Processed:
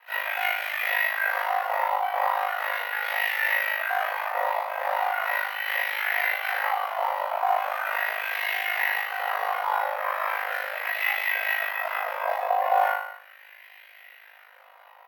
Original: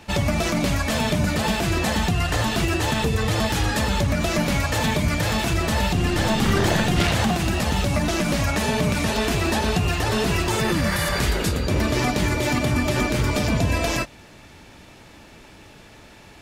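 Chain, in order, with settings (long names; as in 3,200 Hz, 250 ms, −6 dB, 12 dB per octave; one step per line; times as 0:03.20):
speech leveller 0.5 s
Chebyshev high-pass with heavy ripple 470 Hz, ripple 9 dB
convolution reverb RT60 0.45 s, pre-delay 3 ms, DRR 9.5 dB
auto-filter band-pass sine 0.35 Hz 850–1,900 Hz
flutter between parallel walls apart 4 metres, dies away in 0.88 s
wrong playback speed 44.1 kHz file played as 48 kHz
bad sample-rate conversion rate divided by 3×, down filtered, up hold
tilt shelving filter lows +6.5 dB, about 650 Hz
double-tracking delay 36 ms −2 dB
ring modulation 26 Hz
pitch-shifted copies added +5 semitones −13 dB
dynamic equaliser 860 Hz, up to +5 dB, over −48 dBFS, Q 1
level +7 dB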